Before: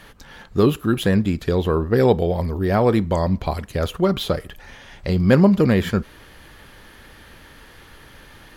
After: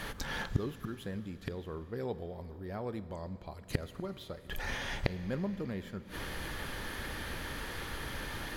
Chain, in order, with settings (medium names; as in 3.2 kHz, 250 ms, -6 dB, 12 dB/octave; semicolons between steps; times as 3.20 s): inverted gate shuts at -20 dBFS, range -27 dB; peaking EQ 2.8 kHz -2 dB 0.23 oct; Schroeder reverb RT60 4 s, combs from 33 ms, DRR 13.5 dB; trim +5 dB